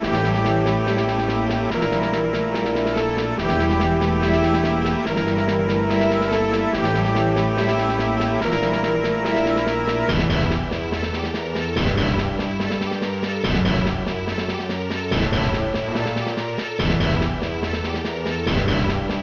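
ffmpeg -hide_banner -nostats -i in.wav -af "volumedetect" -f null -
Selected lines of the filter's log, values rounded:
mean_volume: -20.6 dB
max_volume: -6.8 dB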